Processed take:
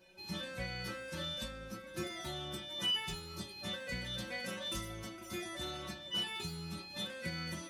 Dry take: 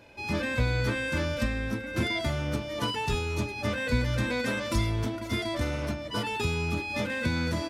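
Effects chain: treble shelf 4.7 kHz +6.5 dB; inharmonic resonator 180 Hz, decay 0.32 s, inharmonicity 0.002; de-hum 250.5 Hz, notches 34; trim +4 dB

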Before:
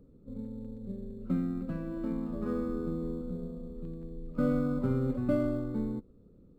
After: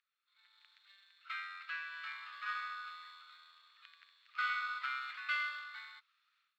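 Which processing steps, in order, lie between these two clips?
Bessel high-pass 2.9 kHz, order 8; treble shelf 3.7 kHz -9 dB; level rider gain up to 15 dB; distance through air 270 m; trim +15 dB

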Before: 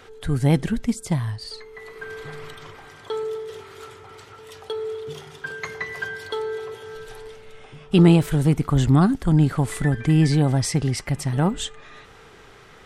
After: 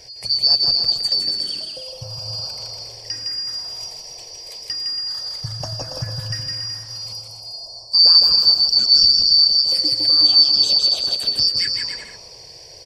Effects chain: four frequency bands reordered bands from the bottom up 2341; touch-sensitive phaser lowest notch 200 Hz, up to 2 kHz, full sweep at -18.5 dBFS; 7.12–7.99 s: elliptic band-stop 970–4700 Hz; bouncing-ball echo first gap 160 ms, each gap 0.75×, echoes 5; in parallel at -1 dB: compression, threshold -28 dBFS, peak gain reduction 18 dB; 9.34–10.58 s: on the sum: bass shelf 270 Hz -6.5 dB

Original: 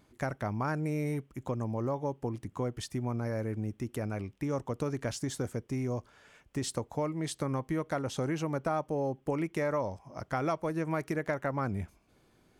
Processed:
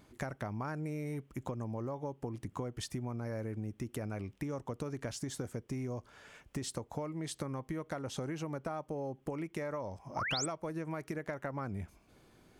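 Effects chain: compression 6:1, threshold -39 dBFS, peak gain reduction 12 dB; painted sound rise, 10.16–10.46 s, 760–8900 Hz -39 dBFS; trim +3 dB

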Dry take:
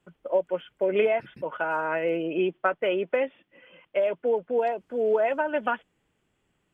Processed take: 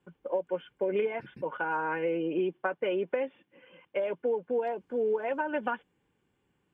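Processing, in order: treble shelf 3.1 kHz -7 dB; comb of notches 650 Hz; compression 4:1, threshold -26 dBFS, peak gain reduction 6.5 dB

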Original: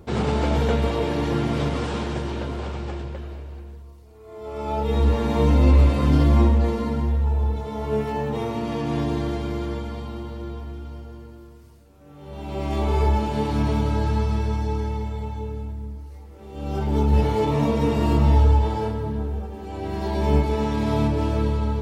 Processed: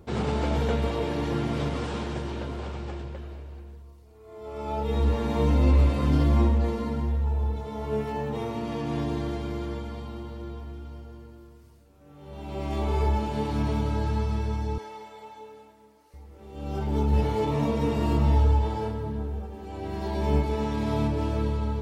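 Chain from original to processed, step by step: 14.78–16.14 s: high-pass 530 Hz 12 dB/octave; trim -4.5 dB

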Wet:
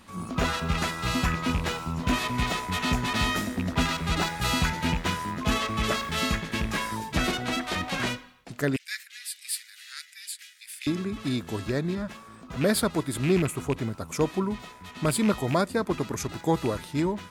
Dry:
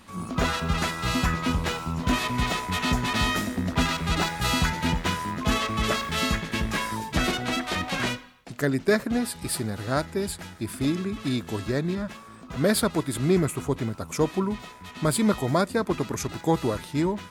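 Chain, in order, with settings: rattle on loud lows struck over -22 dBFS, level -21 dBFS; 8.76–10.87 s: steep high-pass 1.9 kHz 36 dB/octave; trim -1.5 dB

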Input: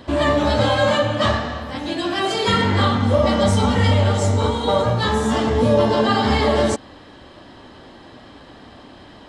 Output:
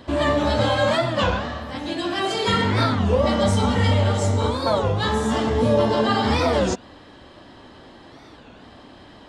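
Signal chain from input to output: warped record 33 1/3 rpm, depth 250 cents; trim -2.5 dB

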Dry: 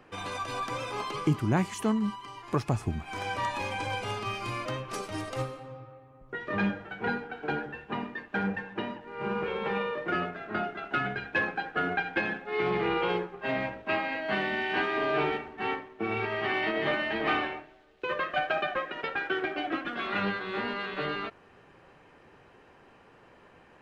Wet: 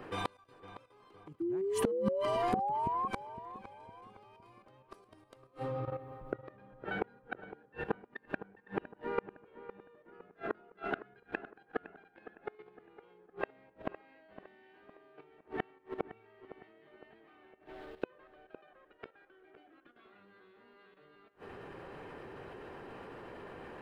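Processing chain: fifteen-band graphic EQ 400 Hz +5 dB, 2.5 kHz -3 dB, 6.3 kHz -8 dB; level held to a coarse grid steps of 12 dB; inverted gate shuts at -30 dBFS, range -37 dB; painted sound rise, 1.40–3.08 s, 330–1100 Hz -45 dBFS; on a send: filtered feedback delay 510 ms, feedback 45%, low-pass 2.2 kHz, level -13.5 dB; on the sum: trim +11.5 dB

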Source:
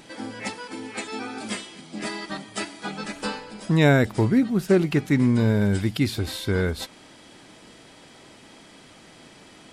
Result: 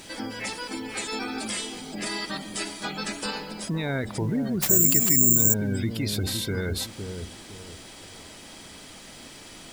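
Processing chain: spectral gate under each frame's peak -30 dB strong; treble shelf 3.5 kHz +11 dB; peak limiter -20.5 dBFS, peak gain reduction 14.5 dB; added noise pink -54 dBFS; on a send: feedback echo behind a low-pass 511 ms, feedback 33%, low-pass 770 Hz, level -6 dB; 4.62–5.54 s: on the sum: careless resampling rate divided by 6×, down none, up zero stuff

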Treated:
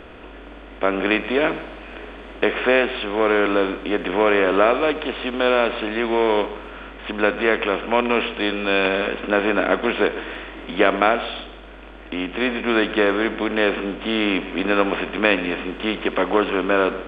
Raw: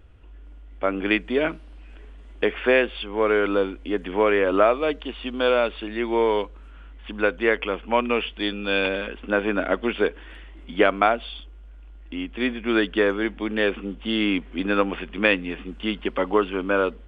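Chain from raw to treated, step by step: spectral levelling over time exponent 0.6; multi-head delay 67 ms, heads first and second, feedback 45%, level -17 dB; trim -1 dB

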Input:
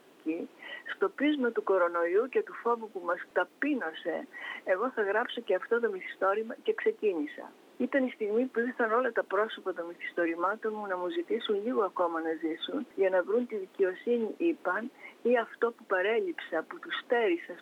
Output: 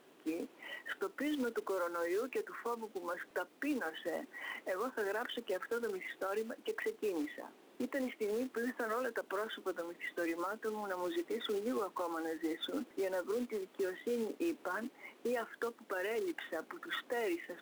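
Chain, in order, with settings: short-mantissa float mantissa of 2-bit; peak limiter -25 dBFS, peak gain reduction 10.5 dB; trim -4 dB

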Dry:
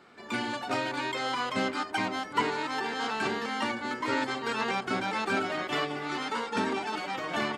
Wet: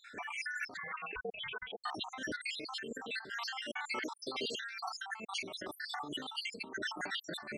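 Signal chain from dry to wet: random holes in the spectrogram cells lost 74%; 3.36–4.63 s: high-pass 690 Hz 6 dB/octave; compressor with a negative ratio -45 dBFS, ratio -1; 0.77–1.84 s: frequency inversion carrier 3.6 kHz; trim +3 dB

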